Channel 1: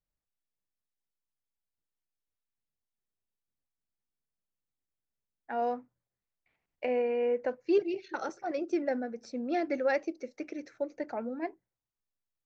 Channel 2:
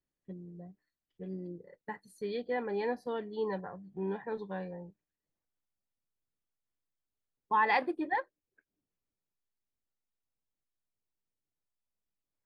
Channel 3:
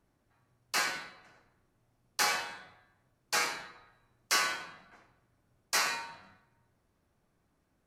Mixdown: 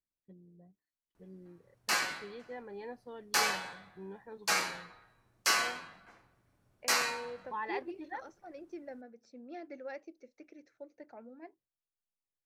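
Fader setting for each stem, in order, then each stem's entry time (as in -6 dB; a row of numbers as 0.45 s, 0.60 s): -15.0 dB, -11.0 dB, 0.0 dB; 0.00 s, 0.00 s, 1.15 s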